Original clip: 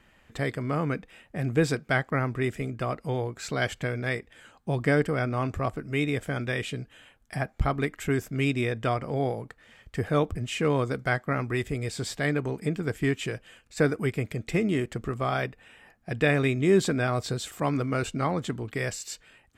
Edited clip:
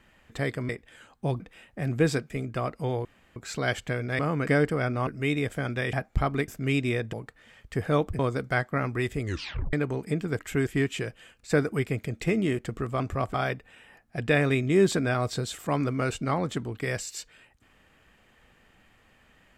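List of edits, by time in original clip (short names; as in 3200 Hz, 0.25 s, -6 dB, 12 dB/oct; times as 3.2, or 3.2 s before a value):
0.69–0.97 swap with 4.13–4.84
1.87–2.55 cut
3.3 insert room tone 0.31 s
5.44–5.78 move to 15.27
6.64–7.37 cut
7.92–8.2 move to 12.94
8.85–9.35 cut
10.41–10.74 cut
11.76 tape stop 0.52 s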